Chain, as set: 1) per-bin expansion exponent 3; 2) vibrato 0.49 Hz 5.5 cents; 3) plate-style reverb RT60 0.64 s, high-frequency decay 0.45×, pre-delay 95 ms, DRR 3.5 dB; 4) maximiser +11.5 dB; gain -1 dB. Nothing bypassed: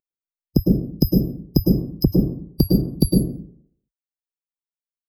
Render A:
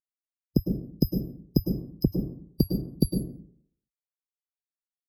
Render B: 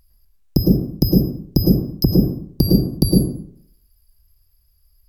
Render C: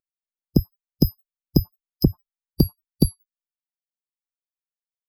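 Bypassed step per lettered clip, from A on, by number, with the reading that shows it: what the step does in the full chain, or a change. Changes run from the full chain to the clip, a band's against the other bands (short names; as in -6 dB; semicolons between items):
4, crest factor change +4.5 dB; 1, momentary loudness spread change +2 LU; 3, momentary loudness spread change -4 LU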